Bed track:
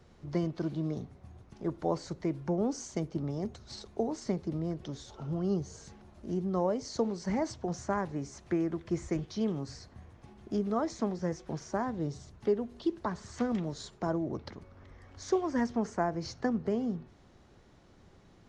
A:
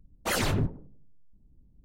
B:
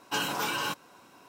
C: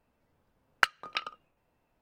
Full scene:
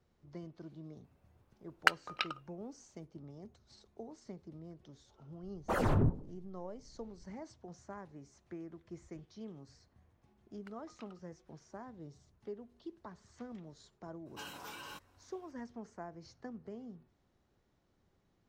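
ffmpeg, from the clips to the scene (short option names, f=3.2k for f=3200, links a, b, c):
-filter_complex "[3:a]asplit=2[a][b];[0:a]volume=-16dB[c];[1:a]firequalizer=gain_entry='entry(1100,0);entry(2200,-13);entry(4000,-18)':delay=0.05:min_phase=1[d];[b]acompressor=threshold=-36dB:ratio=6:attack=3.2:release=140:knee=1:detection=peak[e];[a]atrim=end=2.01,asetpts=PTS-STARTPTS,volume=-2.5dB,afade=t=in:d=0.004:c=hsin,afade=t=out:st=2.006:d=0.004:c=hsin,adelay=1040[f];[d]atrim=end=1.84,asetpts=PTS-STARTPTS,volume=-1.5dB,afade=t=in:d=0.004:c=hsin,afade=t=out:st=1.836:d=0.004:c=hsin,adelay=5430[g];[e]atrim=end=2.01,asetpts=PTS-STARTPTS,volume=-17.5dB,afade=t=in:d=0.004:c=hsin,afade=t=out:st=2.006:d=0.004:c=hsin,adelay=9840[h];[2:a]atrim=end=1.28,asetpts=PTS-STARTPTS,volume=-17dB,afade=t=in:d=0.02,afade=t=out:st=1.26:d=0.02,adelay=14250[i];[c][f][g][h][i]amix=inputs=5:normalize=0"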